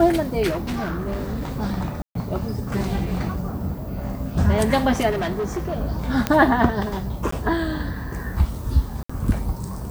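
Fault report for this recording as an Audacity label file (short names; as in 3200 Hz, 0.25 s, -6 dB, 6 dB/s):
0.500000	1.510000	clipped -22 dBFS
2.020000	2.150000	gap 0.133 s
5.100000	5.780000	clipped -21 dBFS
6.270000	6.270000	pop -5 dBFS
7.310000	7.320000	gap 14 ms
9.030000	9.100000	gap 65 ms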